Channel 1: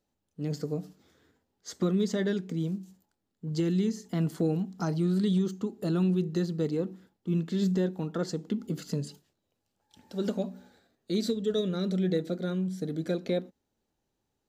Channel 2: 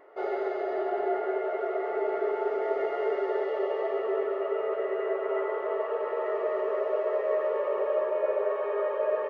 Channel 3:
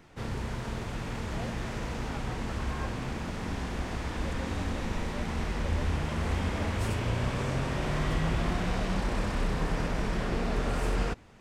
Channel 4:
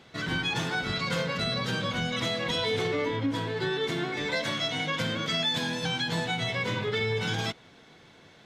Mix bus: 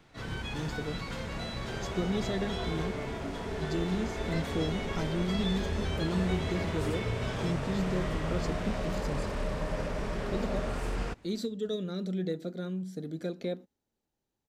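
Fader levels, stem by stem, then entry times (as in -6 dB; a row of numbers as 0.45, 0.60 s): -5.0, -12.5, -4.5, -12.0 dB; 0.15, 1.50, 0.00, 0.00 s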